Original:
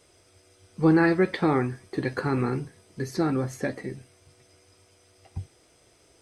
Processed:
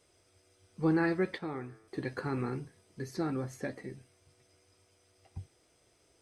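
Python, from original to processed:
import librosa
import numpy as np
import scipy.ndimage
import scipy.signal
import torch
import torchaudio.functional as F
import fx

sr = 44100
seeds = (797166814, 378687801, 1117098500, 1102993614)

y = fx.comb_fb(x, sr, f0_hz=110.0, decay_s=1.6, harmonics='all', damping=0.0, mix_pct=60, at=(1.38, 1.88))
y = F.gain(torch.from_numpy(y), -8.5).numpy()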